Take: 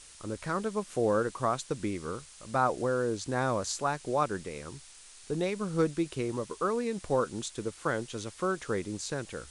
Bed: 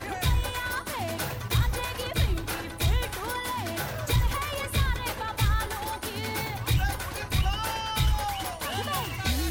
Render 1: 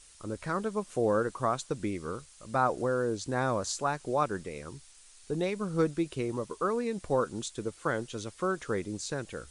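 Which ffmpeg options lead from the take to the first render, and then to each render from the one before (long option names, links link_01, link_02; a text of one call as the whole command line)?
ffmpeg -i in.wav -af "afftdn=noise_reduction=6:noise_floor=-52" out.wav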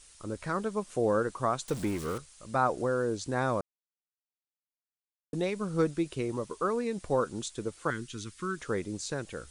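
ffmpeg -i in.wav -filter_complex "[0:a]asettb=1/sr,asplit=3[link_01][link_02][link_03];[link_01]atrim=end=1.684[link_04];[link_02]atrim=start=1.68:end=2.18,asetpts=PTS-STARTPTS,afade=type=in:duration=0.004:curve=qsin,afade=type=out:start_time=0.496:duration=0.004:curve=qsin,aeval=exprs='val(0)+0.5*0.015*sgn(val(0))':channel_layout=same[link_05];[link_03]atrim=start=2.176[link_06];[link_04][link_05]acrossfade=duration=0.004:curve1=hsin:curve2=qsin[link_07];[link_07][link_06]acrossfade=duration=0.004:curve1=qsin:curve2=hsin,asettb=1/sr,asplit=3[link_08][link_09][link_10];[link_08]atrim=end=7.904[link_11];[link_09]atrim=start=7.9:end=8.59,asetpts=PTS-STARTPTS,afade=type=in:duration=0.004:curve=qsin,afade=type=out:start_time=0.686:duration=0.004:curve=qsin,asuperstop=centerf=650:order=4:qfactor=0.71[link_12];[link_10]atrim=start=8.586[link_13];[link_11][link_12]acrossfade=duration=0.004:curve1=hsin:curve2=qsin[link_14];[link_14][link_13]acrossfade=duration=0.004:curve1=qsin:curve2=hsin,asplit=3[link_15][link_16][link_17];[link_15]atrim=end=3.61,asetpts=PTS-STARTPTS,afade=type=out:start_time=3.606:duration=0.004:curve=hsin[link_18];[link_16]atrim=start=3.61:end=5.33,asetpts=PTS-STARTPTS,volume=0[link_19];[link_17]atrim=start=5.33,asetpts=PTS-STARTPTS,afade=type=in:duration=0.004:curve=hsin[link_20];[link_18][link_19][link_20]concat=n=3:v=0:a=1" out.wav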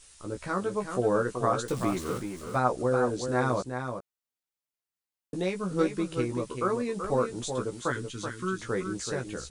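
ffmpeg -i in.wav -filter_complex "[0:a]asplit=2[link_01][link_02];[link_02]adelay=16,volume=-4dB[link_03];[link_01][link_03]amix=inputs=2:normalize=0,asplit=2[link_04][link_05];[link_05]aecho=0:1:380:0.447[link_06];[link_04][link_06]amix=inputs=2:normalize=0" out.wav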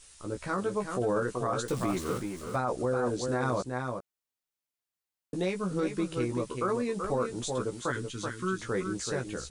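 ffmpeg -i in.wav -af "alimiter=limit=-20.5dB:level=0:latency=1:release=17" out.wav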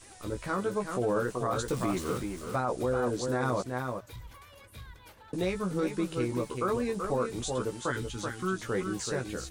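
ffmpeg -i in.wav -i bed.wav -filter_complex "[1:a]volume=-21.5dB[link_01];[0:a][link_01]amix=inputs=2:normalize=0" out.wav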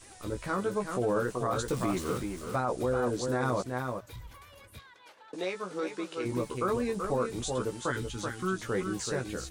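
ffmpeg -i in.wav -filter_complex "[0:a]asplit=3[link_01][link_02][link_03];[link_01]afade=type=out:start_time=4.78:duration=0.02[link_04];[link_02]highpass=420,lowpass=7200,afade=type=in:start_time=4.78:duration=0.02,afade=type=out:start_time=6.24:duration=0.02[link_05];[link_03]afade=type=in:start_time=6.24:duration=0.02[link_06];[link_04][link_05][link_06]amix=inputs=3:normalize=0" out.wav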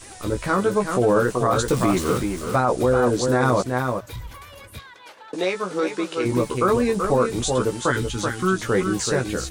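ffmpeg -i in.wav -af "volume=10.5dB" out.wav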